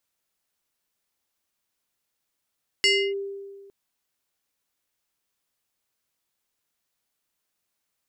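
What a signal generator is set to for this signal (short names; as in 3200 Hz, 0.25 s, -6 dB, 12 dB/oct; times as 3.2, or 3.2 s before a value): FM tone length 0.86 s, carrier 396 Hz, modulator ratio 6.23, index 2.1, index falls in 0.30 s linear, decay 1.65 s, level -15 dB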